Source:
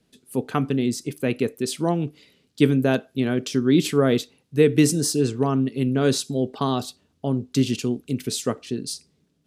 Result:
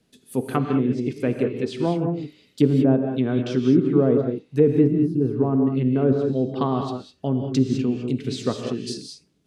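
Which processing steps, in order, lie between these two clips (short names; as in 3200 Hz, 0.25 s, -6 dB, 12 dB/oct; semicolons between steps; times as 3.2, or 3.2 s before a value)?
treble ducked by the level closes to 760 Hz, closed at -16.5 dBFS; spectral gain 4.87–5.21, 370–9200 Hz -15 dB; non-linear reverb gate 0.23 s rising, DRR 4 dB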